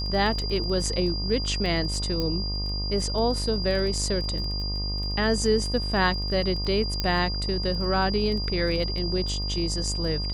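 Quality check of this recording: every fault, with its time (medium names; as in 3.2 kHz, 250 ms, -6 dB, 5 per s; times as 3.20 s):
buzz 50 Hz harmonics 25 -30 dBFS
crackle 15 per s -32 dBFS
whine 4.8 kHz -31 dBFS
2.20 s: pop -15 dBFS
7.00 s: pop -11 dBFS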